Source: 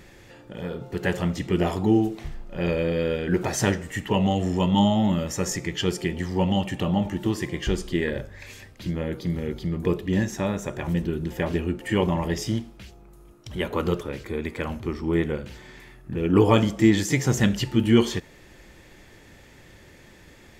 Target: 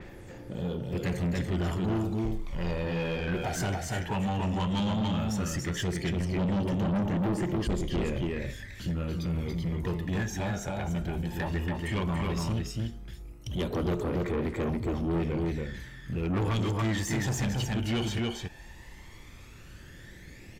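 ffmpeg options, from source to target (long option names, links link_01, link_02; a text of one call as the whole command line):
ffmpeg -i in.wav -filter_complex "[0:a]aphaser=in_gain=1:out_gain=1:delay=1.4:decay=0.62:speed=0.14:type=triangular,aecho=1:1:283:0.596,acrossover=split=450|3000[link_01][link_02][link_03];[link_02]acompressor=threshold=-24dB:ratio=6[link_04];[link_01][link_04][link_03]amix=inputs=3:normalize=0,asoftclip=type=tanh:threshold=-21.5dB,adynamicequalizer=threshold=0.00631:dfrequency=4400:dqfactor=0.7:tfrequency=4400:tqfactor=0.7:attack=5:release=100:ratio=0.375:range=2:mode=cutabove:tftype=highshelf,volume=-3.5dB" out.wav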